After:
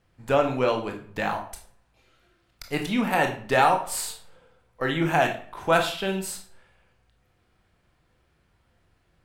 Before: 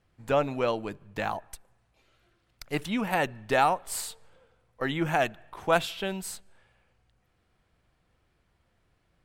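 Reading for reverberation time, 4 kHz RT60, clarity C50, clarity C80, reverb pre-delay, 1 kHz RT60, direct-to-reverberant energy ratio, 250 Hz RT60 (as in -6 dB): 0.45 s, 0.35 s, 9.5 dB, 13.0 dB, 20 ms, 0.45 s, 3.0 dB, 0.45 s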